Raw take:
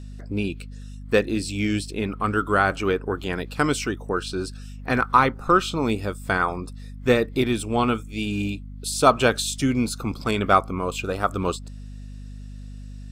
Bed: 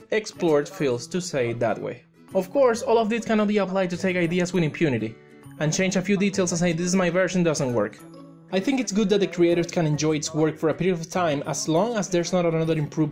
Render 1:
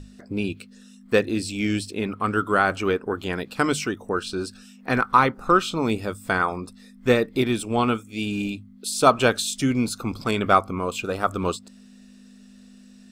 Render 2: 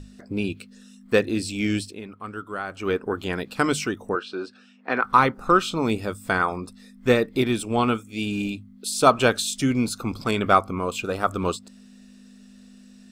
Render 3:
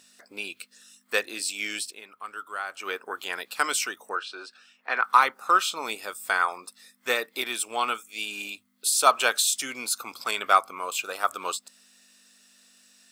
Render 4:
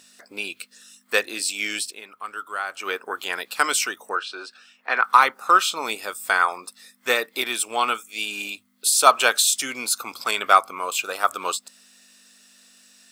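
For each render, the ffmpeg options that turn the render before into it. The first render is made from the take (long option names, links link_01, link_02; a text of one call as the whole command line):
ffmpeg -i in.wav -af "bandreject=frequency=50:width_type=h:width=6,bandreject=frequency=100:width_type=h:width=6,bandreject=frequency=150:width_type=h:width=6" out.wav
ffmpeg -i in.wav -filter_complex "[0:a]asettb=1/sr,asplit=3[link_01][link_02][link_03];[link_01]atrim=end=4.154[link_04];[link_02]atrim=start=4.15:end=5.04,asetpts=PTS-STARTPTS,afade=type=in:duration=0.004:curve=qsin,afade=type=out:start_time=0.886:duration=0.004:curve=qsin,highpass=320,lowpass=3000[link_05];[link_03]atrim=start=5.036[link_06];[link_04][link_05]acrossfade=duration=0.004:curve1=hsin:curve2=qsin[link_07];[link_07][link_06]acrossfade=duration=0.004:curve1=qsin:curve2=hsin,asplit=3[link_08][link_09][link_10];[link_08]atrim=end=2.01,asetpts=PTS-STARTPTS,afade=type=out:start_time=1.79:duration=0.22:silence=0.266073[link_11];[link_09]atrim=start=2.01:end=2.74,asetpts=PTS-STARTPTS,volume=-11.5dB[link_12];[link_10]atrim=start=2.74,asetpts=PTS-STARTPTS,afade=type=in:duration=0.22:silence=0.266073[link_13];[link_11][link_12][link_13]concat=n=3:v=0:a=1" out.wav
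ffmpeg -i in.wav -af "highpass=860,highshelf=frequency=8500:gain=11.5" out.wav
ffmpeg -i in.wav -af "volume=4.5dB,alimiter=limit=-1dB:level=0:latency=1" out.wav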